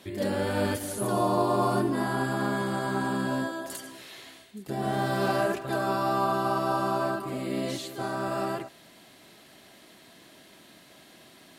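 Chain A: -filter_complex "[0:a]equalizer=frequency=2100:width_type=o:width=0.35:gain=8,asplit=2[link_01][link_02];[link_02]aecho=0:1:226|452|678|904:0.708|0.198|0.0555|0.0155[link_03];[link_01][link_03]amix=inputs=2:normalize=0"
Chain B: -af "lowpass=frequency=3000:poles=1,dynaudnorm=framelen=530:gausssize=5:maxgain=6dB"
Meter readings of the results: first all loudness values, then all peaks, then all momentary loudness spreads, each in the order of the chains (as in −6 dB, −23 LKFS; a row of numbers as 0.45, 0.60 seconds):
−26.5, −23.5 LKFS; −11.0, −8.5 dBFS; 12, 13 LU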